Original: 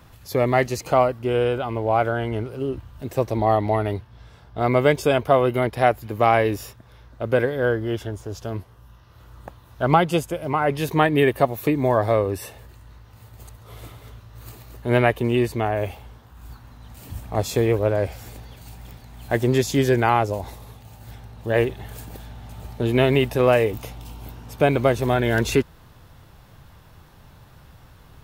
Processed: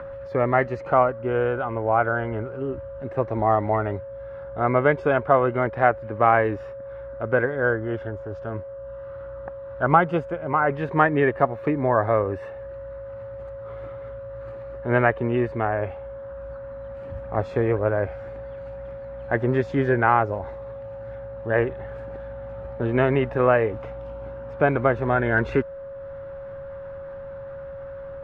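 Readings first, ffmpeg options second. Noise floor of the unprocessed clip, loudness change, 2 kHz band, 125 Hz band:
−50 dBFS, −1.5 dB, +1.5 dB, −3.0 dB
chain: -af "acompressor=mode=upward:threshold=-36dB:ratio=2.5,aeval=exprs='val(0)+0.0251*sin(2*PI*550*n/s)':channel_layout=same,lowpass=frequency=1500:width_type=q:width=2.3,volume=-3dB"

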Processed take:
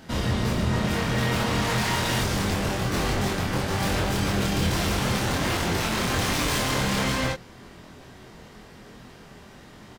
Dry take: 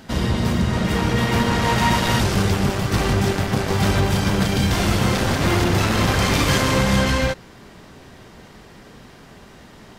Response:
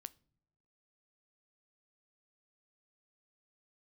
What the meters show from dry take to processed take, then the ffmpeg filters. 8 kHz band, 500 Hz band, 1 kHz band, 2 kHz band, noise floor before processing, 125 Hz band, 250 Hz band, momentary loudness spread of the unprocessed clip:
−2.5 dB, −6.0 dB, −5.5 dB, −4.5 dB, −45 dBFS, −6.5 dB, −6.5 dB, 3 LU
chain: -filter_complex "[0:a]aeval=exprs='0.158*(abs(mod(val(0)/0.158+3,4)-2)-1)':channel_layout=same,asplit=2[link_01][link_02];[link_02]adelay=24,volume=-2.5dB[link_03];[link_01][link_03]amix=inputs=2:normalize=0,volume=-4.5dB"

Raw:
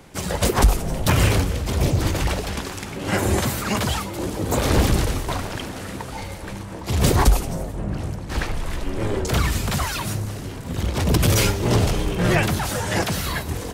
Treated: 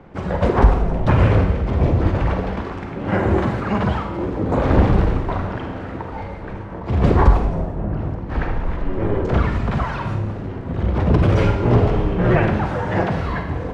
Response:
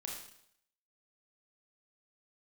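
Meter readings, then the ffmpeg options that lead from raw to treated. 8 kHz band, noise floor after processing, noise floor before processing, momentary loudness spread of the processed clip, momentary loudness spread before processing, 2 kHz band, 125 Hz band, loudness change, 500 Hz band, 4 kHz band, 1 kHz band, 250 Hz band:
below −20 dB, −30 dBFS, −33 dBFS, 12 LU, 12 LU, −1.0 dB, +3.5 dB, +2.5 dB, +4.0 dB, −11.0 dB, +3.0 dB, +4.0 dB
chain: -filter_complex "[0:a]lowpass=1500,asplit=2[link_01][link_02];[1:a]atrim=start_sample=2205,asetrate=34398,aresample=44100[link_03];[link_02][link_03]afir=irnorm=-1:irlink=0,volume=2dB[link_04];[link_01][link_04]amix=inputs=2:normalize=0,volume=-2.5dB"

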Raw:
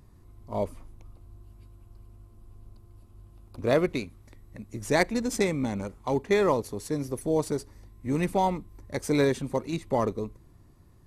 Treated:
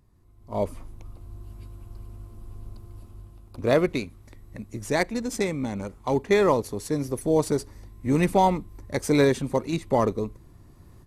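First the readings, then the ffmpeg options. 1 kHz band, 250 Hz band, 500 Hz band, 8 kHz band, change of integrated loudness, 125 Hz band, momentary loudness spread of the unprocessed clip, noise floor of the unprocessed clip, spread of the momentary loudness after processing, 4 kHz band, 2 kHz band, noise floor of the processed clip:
+4.0 dB, +3.0 dB, +3.0 dB, +2.0 dB, +3.0 dB, +3.5 dB, 13 LU, −55 dBFS, 23 LU, +2.0 dB, +1.5 dB, −52 dBFS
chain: -af "dynaudnorm=framelen=380:gausssize=3:maxgain=16.5dB,volume=-7.5dB"

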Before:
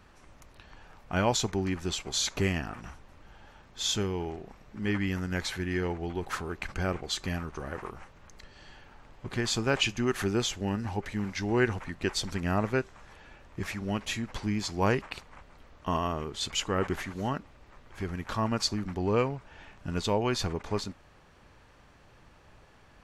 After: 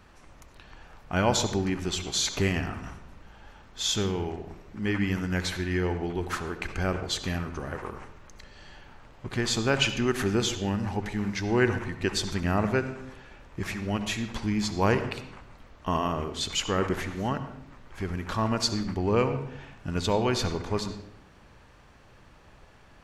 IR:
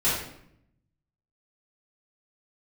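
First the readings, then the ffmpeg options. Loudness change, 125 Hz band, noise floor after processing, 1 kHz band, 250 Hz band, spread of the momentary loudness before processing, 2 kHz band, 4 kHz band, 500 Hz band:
+2.5 dB, +3.0 dB, −54 dBFS, +2.5 dB, +3.0 dB, 12 LU, +2.5 dB, +2.5 dB, +2.5 dB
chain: -filter_complex "[0:a]asplit=2[link_01][link_02];[1:a]atrim=start_sample=2205,lowpass=7800,adelay=61[link_03];[link_02][link_03]afir=irnorm=-1:irlink=0,volume=-22.5dB[link_04];[link_01][link_04]amix=inputs=2:normalize=0,volume=2dB"

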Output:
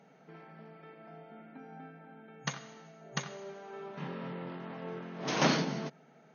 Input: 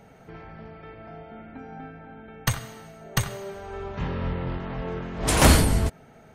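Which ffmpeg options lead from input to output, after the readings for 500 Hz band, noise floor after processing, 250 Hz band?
−8.5 dB, −61 dBFS, −8.5 dB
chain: -af "afftfilt=real='re*between(b*sr/4096,130,6600)':imag='im*between(b*sr/4096,130,6600)':win_size=4096:overlap=0.75,volume=-8.5dB"

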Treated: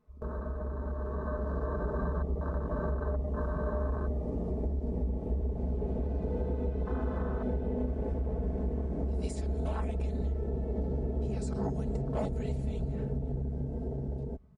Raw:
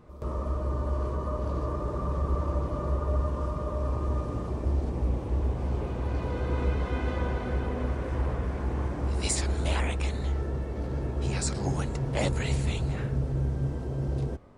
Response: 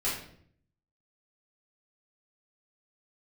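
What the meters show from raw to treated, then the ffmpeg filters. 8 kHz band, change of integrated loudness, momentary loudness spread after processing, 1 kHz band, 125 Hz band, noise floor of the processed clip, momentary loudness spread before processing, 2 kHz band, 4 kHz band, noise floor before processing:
−19.0 dB, −4.0 dB, 3 LU, −6.0 dB, −5.0 dB, −38 dBFS, 4 LU, −9.5 dB, below −15 dB, −34 dBFS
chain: -filter_complex "[0:a]acompressor=threshold=-29dB:ratio=16,asplit=2[link_01][link_02];[link_02]aecho=0:1:528:0.075[link_03];[link_01][link_03]amix=inputs=2:normalize=0,afwtdn=0.0158,dynaudnorm=framelen=210:gausssize=13:maxgain=4.5dB,aecho=1:1:4.6:0.65,volume=-3dB"

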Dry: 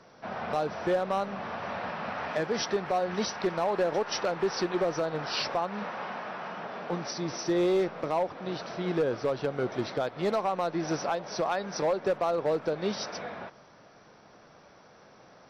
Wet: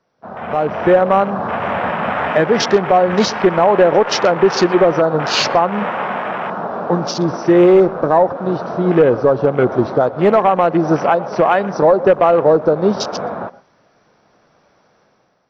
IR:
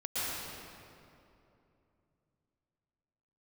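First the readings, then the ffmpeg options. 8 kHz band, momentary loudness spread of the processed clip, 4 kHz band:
can't be measured, 9 LU, +12.5 dB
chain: -filter_complex "[0:a]afwtdn=0.0112,dynaudnorm=framelen=170:gausssize=7:maxgain=12dB,asplit=2[link_01][link_02];[1:a]atrim=start_sample=2205,afade=type=out:start_time=0.18:duration=0.01,atrim=end_sample=8379,lowpass=2600[link_03];[link_02][link_03]afir=irnorm=-1:irlink=0,volume=-16.5dB[link_04];[link_01][link_04]amix=inputs=2:normalize=0,volume=3.5dB"

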